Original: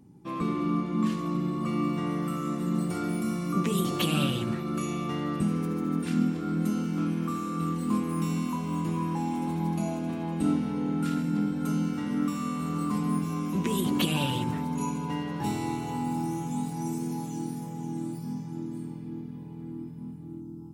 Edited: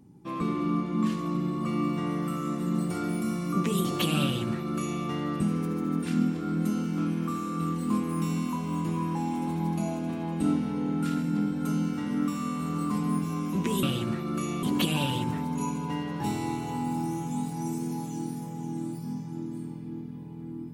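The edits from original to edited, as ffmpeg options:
-filter_complex "[0:a]asplit=3[a][b][c];[a]atrim=end=13.832[d];[b]atrim=start=4.228:end=5.032[e];[c]atrim=start=13.828[f];[d][e]acrossfade=d=0.004:c1=hsin:c2=hsin[g];[g][f]acrossfade=d=0.004:c1=hsin:c2=hsin"

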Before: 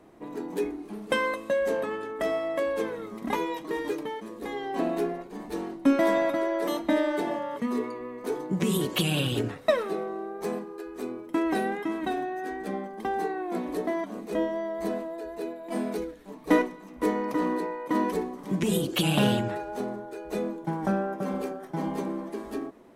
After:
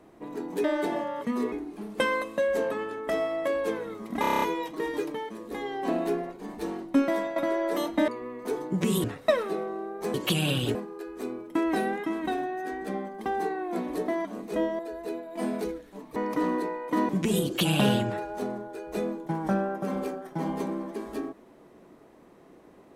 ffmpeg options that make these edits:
-filter_complex "[0:a]asplit=18[a][b][c][d][e][f][g][h][i][j][k][l][m][n][o][p][q][r];[a]atrim=end=0.642[s];[b]atrim=start=6.988:end=7.872[t];[c]atrim=start=0.638:end=3.362[u];[d]atrim=start=3.328:end=3.362[v];[e]atrim=start=3.328:end=3.362[w];[f]atrim=start=3.328:end=3.362[x];[g]atrim=start=3.328:end=3.362[y];[h]atrim=start=3.328:end=3.362[z];[i]atrim=start=3.328:end=3.362[aa];[j]atrim=start=3.328:end=6.27,asetpts=PTS-STARTPTS,afade=t=out:st=2.462:d=0.48:silence=0.266073[ab];[k]atrim=start=6.27:end=6.992,asetpts=PTS-STARTPTS,afade=t=in:d=0.004:c=hsin:silence=0.266073[ac];[l]atrim=start=7.868:end=8.832[ad];[m]atrim=start=9.438:end=10.542[ae];[n]atrim=start=8.828:end=9.442[af];[o]atrim=start=10.538:end=14.582[ag];[p]atrim=start=15.118:end=16.492[ah];[q]atrim=start=17.138:end=18.072[ai];[r]atrim=start=18.468[aj];[s][t]acrossfade=d=0.004:c1=hsin:c2=hsin[ak];[ak][u]acrossfade=d=0.004:c1=hsin:c2=hsin[al];[al][v]acrossfade=d=0.004:c1=hsin:c2=hsin[am];[am][w]acrossfade=d=0.004:c1=hsin:c2=hsin[an];[an][x]acrossfade=d=0.004:c1=hsin:c2=hsin[ao];[ao][y]acrossfade=d=0.004:c1=hsin:c2=hsin[ap];[ap][z]acrossfade=d=0.004:c1=hsin:c2=hsin[aq];[aq][aa]acrossfade=d=0.004:c1=hsin:c2=hsin[ar];[ab][ac]concat=n=2:v=0:a=1[as];[ar][as]acrossfade=d=0.004:c1=hsin:c2=hsin[at];[at][ad]acrossfade=d=0.004:c1=hsin:c2=hsin[au];[au][ae]acrossfade=d=0.004:c1=hsin:c2=hsin[av];[av][af]acrossfade=d=0.004:c1=hsin:c2=hsin[aw];[aw][ag]acrossfade=d=0.004:c1=hsin:c2=hsin[ax];[ax][ah]acrossfade=d=0.004:c1=hsin:c2=hsin[ay];[ay][ai]acrossfade=d=0.004:c1=hsin:c2=hsin[az];[az][aj]acrossfade=d=0.004:c1=hsin:c2=hsin"

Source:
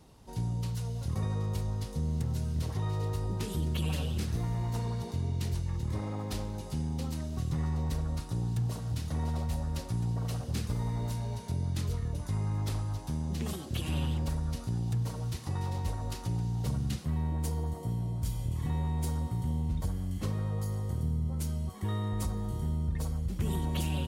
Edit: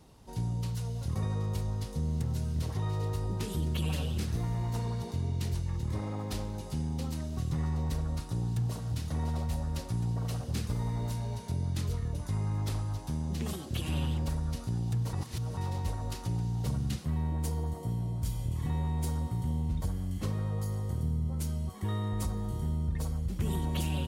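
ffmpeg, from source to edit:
-filter_complex "[0:a]asplit=3[a][b][c];[a]atrim=end=15.132[d];[b]atrim=start=15.128:end=15.572,asetpts=PTS-STARTPTS,areverse[e];[c]atrim=start=15.568[f];[d][e]acrossfade=d=0.004:c1=hsin:c2=hsin[g];[g][f]acrossfade=d=0.004:c1=hsin:c2=hsin"

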